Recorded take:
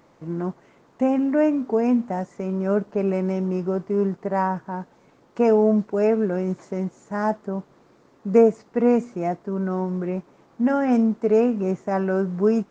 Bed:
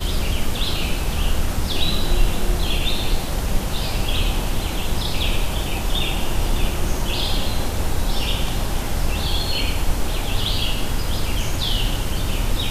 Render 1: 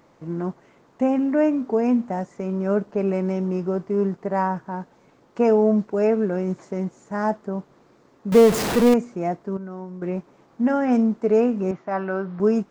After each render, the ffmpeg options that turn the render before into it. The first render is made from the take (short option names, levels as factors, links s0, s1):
-filter_complex "[0:a]asettb=1/sr,asplit=3[s0][s1][s2];[s0]atrim=end=8.324[s3];[s1]atrim=start=8.32:end=8.94,asetpts=PTS-STARTPTS,afade=t=in:d=0.004:c=qsin,afade=t=out:st=0.616:d=0.004:c=qsin,aeval=exprs='val(0)+0.5*0.119*sgn(val(0))':c=same[s4];[s2]atrim=start=8.936[s5];[s3][s4]acrossfade=d=0.004:c1=hsin:c2=qsin[s6];[s6][s5]acrossfade=d=0.004:c1=qsin:c2=hsin,asettb=1/sr,asplit=3[s7][s8][s9];[s7]atrim=end=11.714[s10];[s8]atrim=start=11.71:end=12.4,asetpts=PTS-STARTPTS,afade=t=in:d=0.004:c=qsin,afade=t=out:st=0.686:d=0.004:c=qsin,highpass=160,equalizer=f=220:t=q:w=4:g=-9,equalizer=f=450:t=q:w=4:g=-10,equalizer=f=1300:t=q:w=4:g=4,lowpass=f=4500:w=0.5412,lowpass=f=4500:w=1.3066[s11];[s9]atrim=start=12.396[s12];[s10][s11]acrossfade=d=0.004:c1=hsin:c2=qsin[s13];[s13][s12]acrossfade=d=0.004:c1=qsin:c2=hsin,asplit=3[s14][s15][s16];[s14]atrim=end=9.572[s17];[s15]atrim=start=9.568:end=10.022,asetpts=PTS-STARTPTS,volume=0.335[s18];[s16]atrim=start=10.018[s19];[s17][s18]acrossfade=d=0.004:c1=hsin:c2=hsin[s20];[s20][s19]acrossfade=d=0.004:c1=hsin:c2=hsin"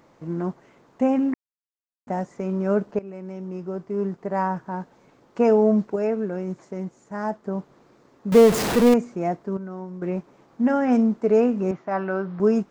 -filter_complex "[0:a]asplit=6[s0][s1][s2][s3][s4][s5];[s0]atrim=end=1.34,asetpts=PTS-STARTPTS,afade=t=out:st=1.336:d=0.004:c=hsin[s6];[s1]atrim=start=1.34:end=2.07,asetpts=PTS-STARTPTS,volume=0[s7];[s2]atrim=start=2.07:end=2.99,asetpts=PTS-STARTPTS,afade=t=in:d=0.004:c=hsin,afade=t=out:st=0.916:d=0.004:c=hsin:silence=0.125893[s8];[s3]atrim=start=2.99:end=5.962,asetpts=PTS-STARTPTS,afade=t=in:d=1.76:silence=0.125893[s9];[s4]atrim=start=5.958:end=7.452,asetpts=PTS-STARTPTS,volume=0.596[s10];[s5]atrim=start=7.448[s11];[s6][s7][s8][s9]concat=n=4:v=0:a=1[s12];[s12][s10]acrossfade=d=0.004:c1=hsin:c2=hsin[s13];[s13][s11]acrossfade=d=0.004:c1=hsin:c2=hsin"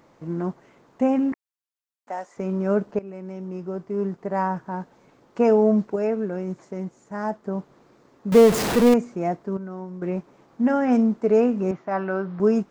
-filter_complex "[0:a]asettb=1/sr,asplit=3[s0][s1][s2];[s0]atrim=end=1.324[s3];[s1]atrim=start=1.32:end=2.37,asetpts=PTS-STARTPTS,afade=t=in:d=0.004:c=qsin,afade=t=out:st=1.046:d=0.004:c=qsin,highpass=630[s4];[s2]atrim=start=2.366[s5];[s3][s4]acrossfade=d=0.004:c1=hsin:c2=qsin[s6];[s6][s5]acrossfade=d=0.004:c1=qsin:c2=hsin"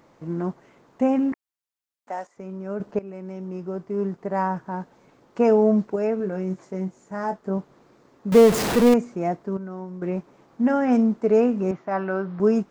-filter_complex "[0:a]asettb=1/sr,asplit=3[s0][s1][s2];[s0]atrim=end=6.184[s3];[s1]atrim=start=6.18:end=7.58,asetpts=PTS-STARTPTS,afade=t=in:d=0.004:c=qsin,afade=t=out:st=1.396:d=0.004:c=qsin,asplit=2[s4][s5];[s5]adelay=21,volume=0.447[s6];[s4][s6]amix=inputs=2:normalize=0,atrim=end_sample=61740[s7];[s2]atrim=start=7.576[s8];[s3][s7]acrossfade=d=0.004:c1=hsin:c2=qsin[s9];[s9][s8]acrossfade=d=0.004:c1=qsin:c2=hsin,asplit=3[s10][s11][s12];[s10]atrim=end=2.272[s13];[s11]atrim=start=2.268:end=2.802,asetpts=PTS-STARTPTS,volume=0.355[s14];[s12]atrim=start=2.798[s15];[s13][s14]acrossfade=d=0.004:c1=hsin:c2=hsin[s16];[s16][s15]acrossfade=d=0.004:c1=hsin:c2=hsin"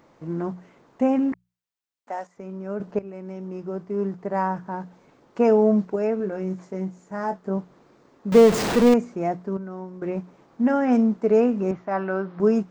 -af "equalizer=f=12000:t=o:w=0.51:g=-10.5,bandreject=f=60:t=h:w=6,bandreject=f=120:t=h:w=6,bandreject=f=180:t=h:w=6"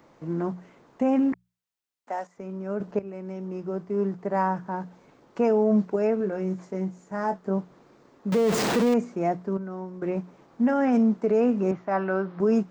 -filter_complex "[0:a]acrossover=split=100|760|2700[s0][s1][s2][s3];[s0]acompressor=threshold=0.00178:ratio=6[s4];[s4][s1][s2][s3]amix=inputs=4:normalize=0,alimiter=limit=0.188:level=0:latency=1:release=22"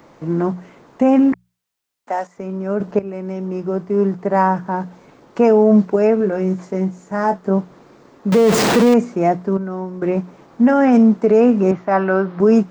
-af "volume=2.99"